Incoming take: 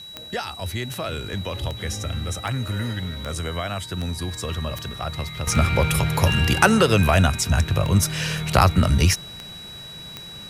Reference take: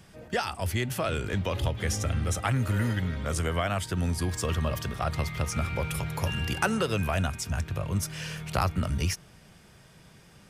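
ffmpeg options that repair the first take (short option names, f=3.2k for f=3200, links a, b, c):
-af "adeclick=t=4,bandreject=f=3.9k:w=30,agate=range=-21dB:threshold=-30dB,asetnsamples=n=441:p=0,asendcmd='5.47 volume volume -10.5dB',volume=0dB"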